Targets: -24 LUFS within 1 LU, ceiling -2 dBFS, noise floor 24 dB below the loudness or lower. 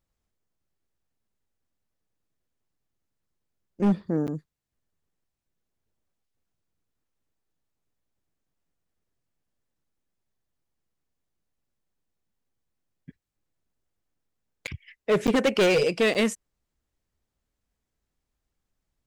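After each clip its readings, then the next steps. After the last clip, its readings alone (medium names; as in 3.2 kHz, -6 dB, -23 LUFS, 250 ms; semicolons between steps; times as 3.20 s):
clipped samples 0.6%; clipping level -17.0 dBFS; dropouts 4; longest dropout 8.8 ms; loudness -24.0 LUFS; peak level -17.0 dBFS; loudness target -24.0 LUFS
-> clip repair -17 dBFS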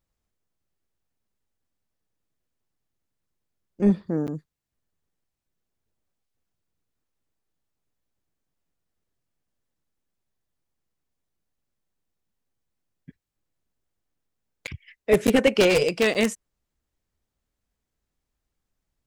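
clipped samples 0.0%; dropouts 4; longest dropout 8.8 ms
-> interpolate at 4.27/14.67/15.27/16.14 s, 8.8 ms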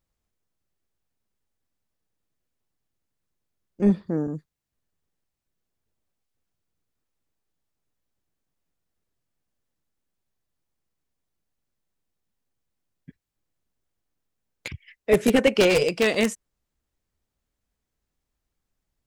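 dropouts 0; loudness -22.0 LUFS; peak level -8.0 dBFS; loudness target -24.0 LUFS
-> trim -2 dB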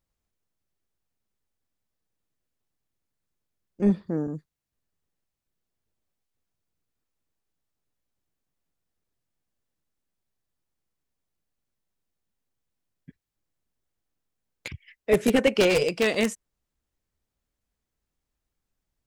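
loudness -24.0 LUFS; peak level -10.0 dBFS; noise floor -85 dBFS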